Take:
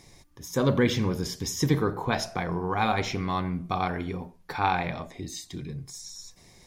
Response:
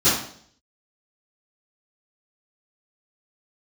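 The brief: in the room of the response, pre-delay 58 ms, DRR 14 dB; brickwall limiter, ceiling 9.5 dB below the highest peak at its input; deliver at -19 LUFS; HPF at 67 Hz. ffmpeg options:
-filter_complex "[0:a]highpass=67,alimiter=limit=-19.5dB:level=0:latency=1,asplit=2[a][b];[1:a]atrim=start_sample=2205,adelay=58[c];[b][c]afir=irnorm=-1:irlink=0,volume=-32.5dB[d];[a][d]amix=inputs=2:normalize=0,volume=12.5dB"

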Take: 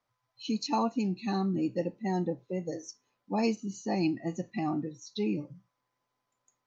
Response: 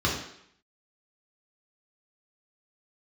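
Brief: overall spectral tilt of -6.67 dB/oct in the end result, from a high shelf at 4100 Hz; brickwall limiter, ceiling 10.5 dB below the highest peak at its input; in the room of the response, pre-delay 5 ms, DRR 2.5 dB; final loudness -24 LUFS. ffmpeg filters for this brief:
-filter_complex "[0:a]highshelf=f=4.1k:g=-6,alimiter=level_in=4.5dB:limit=-24dB:level=0:latency=1,volume=-4.5dB,asplit=2[a][b];[1:a]atrim=start_sample=2205,adelay=5[c];[b][c]afir=irnorm=-1:irlink=0,volume=-15dB[d];[a][d]amix=inputs=2:normalize=0,volume=11dB"

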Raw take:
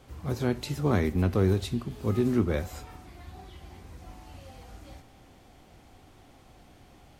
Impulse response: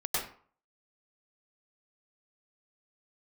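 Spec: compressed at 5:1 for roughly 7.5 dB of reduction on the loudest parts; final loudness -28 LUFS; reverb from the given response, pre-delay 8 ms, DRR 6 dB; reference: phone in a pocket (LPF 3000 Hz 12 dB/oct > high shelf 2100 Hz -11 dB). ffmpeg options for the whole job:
-filter_complex "[0:a]acompressor=threshold=-27dB:ratio=5,asplit=2[a][b];[1:a]atrim=start_sample=2205,adelay=8[c];[b][c]afir=irnorm=-1:irlink=0,volume=-13dB[d];[a][d]amix=inputs=2:normalize=0,lowpass=3k,highshelf=f=2.1k:g=-11,volume=4.5dB"

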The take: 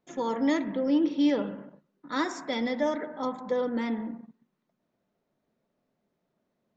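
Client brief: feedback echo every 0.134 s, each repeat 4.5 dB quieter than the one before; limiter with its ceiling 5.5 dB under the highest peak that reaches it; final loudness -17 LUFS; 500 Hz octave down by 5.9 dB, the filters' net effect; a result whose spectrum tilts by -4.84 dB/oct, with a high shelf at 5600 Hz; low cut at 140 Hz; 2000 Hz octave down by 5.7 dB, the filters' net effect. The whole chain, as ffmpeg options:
-af "highpass=140,equalizer=f=500:t=o:g=-6.5,equalizer=f=2k:t=o:g=-6.5,highshelf=f=5.6k:g=3,alimiter=limit=-22.5dB:level=0:latency=1,aecho=1:1:134|268|402|536|670|804|938|1072|1206:0.596|0.357|0.214|0.129|0.0772|0.0463|0.0278|0.0167|0.01,volume=14.5dB"

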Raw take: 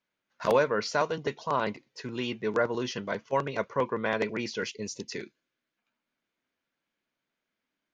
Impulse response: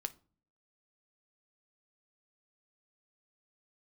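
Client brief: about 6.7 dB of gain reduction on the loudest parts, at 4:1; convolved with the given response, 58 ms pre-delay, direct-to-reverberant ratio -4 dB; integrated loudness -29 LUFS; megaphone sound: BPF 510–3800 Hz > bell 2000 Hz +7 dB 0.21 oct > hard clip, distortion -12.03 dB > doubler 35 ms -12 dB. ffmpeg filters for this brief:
-filter_complex "[0:a]acompressor=threshold=-27dB:ratio=4,asplit=2[a][b];[1:a]atrim=start_sample=2205,adelay=58[c];[b][c]afir=irnorm=-1:irlink=0,volume=5.5dB[d];[a][d]amix=inputs=2:normalize=0,highpass=510,lowpass=3.8k,equalizer=f=2k:t=o:w=0.21:g=7,asoftclip=type=hard:threshold=-24.5dB,asplit=2[e][f];[f]adelay=35,volume=-12dB[g];[e][g]amix=inputs=2:normalize=0,volume=2.5dB"

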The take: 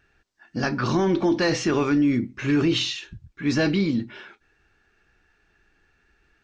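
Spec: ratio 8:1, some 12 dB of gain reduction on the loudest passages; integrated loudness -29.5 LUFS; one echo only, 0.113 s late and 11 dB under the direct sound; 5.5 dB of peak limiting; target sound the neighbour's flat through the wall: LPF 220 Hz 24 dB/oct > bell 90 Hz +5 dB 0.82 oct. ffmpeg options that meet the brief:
-af "acompressor=threshold=-30dB:ratio=8,alimiter=level_in=3dB:limit=-24dB:level=0:latency=1,volume=-3dB,lowpass=f=220:w=0.5412,lowpass=f=220:w=1.3066,equalizer=f=90:t=o:w=0.82:g=5,aecho=1:1:113:0.282,volume=12dB"

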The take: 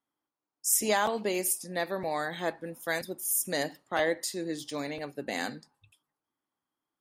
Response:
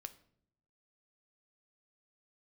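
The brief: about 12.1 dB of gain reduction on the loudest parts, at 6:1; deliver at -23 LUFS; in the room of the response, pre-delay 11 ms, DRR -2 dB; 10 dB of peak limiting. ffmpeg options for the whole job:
-filter_complex "[0:a]acompressor=threshold=-35dB:ratio=6,alimiter=level_in=8.5dB:limit=-24dB:level=0:latency=1,volume=-8.5dB,asplit=2[a][b];[1:a]atrim=start_sample=2205,adelay=11[c];[b][c]afir=irnorm=-1:irlink=0,volume=7dB[d];[a][d]amix=inputs=2:normalize=0,volume=15.5dB"

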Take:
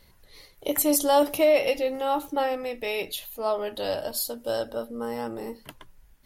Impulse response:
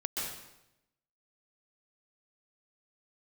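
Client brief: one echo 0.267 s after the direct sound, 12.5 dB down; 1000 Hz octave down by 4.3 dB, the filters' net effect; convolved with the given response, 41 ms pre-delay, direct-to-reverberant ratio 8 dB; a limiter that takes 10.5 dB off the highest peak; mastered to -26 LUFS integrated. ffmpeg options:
-filter_complex "[0:a]equalizer=f=1k:t=o:g=-5.5,alimiter=limit=-19.5dB:level=0:latency=1,aecho=1:1:267:0.237,asplit=2[a][b];[1:a]atrim=start_sample=2205,adelay=41[c];[b][c]afir=irnorm=-1:irlink=0,volume=-12.5dB[d];[a][d]amix=inputs=2:normalize=0,volume=3.5dB"

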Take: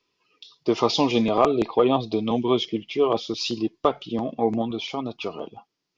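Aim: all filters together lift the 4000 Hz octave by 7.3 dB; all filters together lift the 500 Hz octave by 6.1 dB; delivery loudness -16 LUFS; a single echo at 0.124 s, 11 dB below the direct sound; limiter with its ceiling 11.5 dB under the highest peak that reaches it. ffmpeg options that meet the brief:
-af "equalizer=f=500:t=o:g=7.5,equalizer=f=4k:t=o:g=9,alimiter=limit=-13dB:level=0:latency=1,aecho=1:1:124:0.282,volume=7.5dB"

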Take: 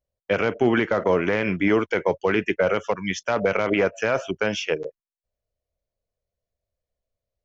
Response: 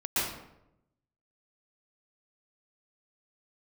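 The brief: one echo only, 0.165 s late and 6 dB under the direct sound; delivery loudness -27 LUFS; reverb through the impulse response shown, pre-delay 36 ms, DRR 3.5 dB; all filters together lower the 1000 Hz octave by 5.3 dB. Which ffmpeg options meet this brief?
-filter_complex "[0:a]equalizer=f=1k:t=o:g=-7.5,aecho=1:1:165:0.501,asplit=2[a][b];[1:a]atrim=start_sample=2205,adelay=36[c];[b][c]afir=irnorm=-1:irlink=0,volume=-13dB[d];[a][d]amix=inputs=2:normalize=0,volume=-5dB"

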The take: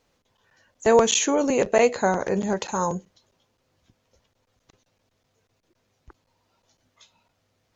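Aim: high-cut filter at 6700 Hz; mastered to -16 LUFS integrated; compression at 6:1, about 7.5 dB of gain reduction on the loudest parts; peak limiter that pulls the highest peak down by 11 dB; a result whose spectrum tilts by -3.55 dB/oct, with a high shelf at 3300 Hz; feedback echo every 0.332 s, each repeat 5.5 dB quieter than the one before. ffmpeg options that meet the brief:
-af "lowpass=6.7k,highshelf=f=3.3k:g=9,acompressor=threshold=-20dB:ratio=6,alimiter=limit=-20.5dB:level=0:latency=1,aecho=1:1:332|664|996|1328|1660|1992|2324:0.531|0.281|0.149|0.079|0.0419|0.0222|0.0118,volume=13.5dB"

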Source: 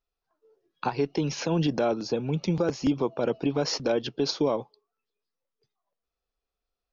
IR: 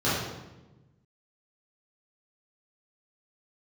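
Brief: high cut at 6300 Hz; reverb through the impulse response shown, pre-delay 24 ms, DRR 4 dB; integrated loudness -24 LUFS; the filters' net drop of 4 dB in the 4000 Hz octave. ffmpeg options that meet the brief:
-filter_complex "[0:a]lowpass=6.3k,equalizer=f=4k:t=o:g=-4,asplit=2[a][b];[1:a]atrim=start_sample=2205,adelay=24[c];[b][c]afir=irnorm=-1:irlink=0,volume=-19dB[d];[a][d]amix=inputs=2:normalize=0,volume=1dB"

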